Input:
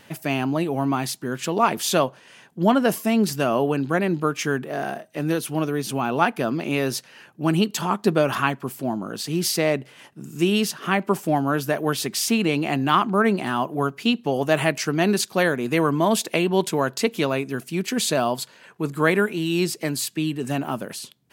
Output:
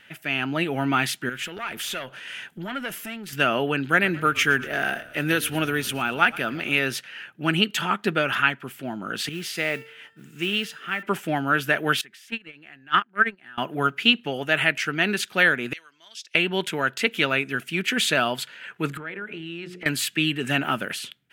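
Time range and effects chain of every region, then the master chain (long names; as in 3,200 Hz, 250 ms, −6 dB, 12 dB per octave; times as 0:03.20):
0:01.29–0:03.33: high-shelf EQ 5,700 Hz +7 dB + downward compressor 3 to 1, threshold −33 dBFS + tube saturation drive 27 dB, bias 0.35
0:03.84–0:06.79: high-shelf EQ 8,800 Hz +10 dB + echo with shifted repeats 116 ms, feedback 62%, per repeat −34 Hz, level −19.5 dB
0:09.29–0:11.03: high-shelf EQ 7,700 Hz −4 dB + tuned comb filter 450 Hz, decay 0.7 s, mix 70% + noise that follows the level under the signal 22 dB
0:12.01–0:13.58: noise gate −17 dBFS, range −34 dB + parametric band 1,700 Hz +8.5 dB 0.35 octaves + upward compression, threshold −37 dBFS
0:15.73–0:16.35: resonant band-pass 5,400 Hz, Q 5 + one half of a high-frequency compander decoder only
0:18.97–0:19.86: low-pass filter 1,300 Hz 6 dB per octave + mains-hum notches 60/120/180/240/300/360/420/480/540/600 Hz + downward compressor 10 to 1, threshold −34 dBFS
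whole clip: automatic gain control; flat-topped bell 2,100 Hz +12.5 dB; notch filter 1,100 Hz, Q 8.8; level −10.5 dB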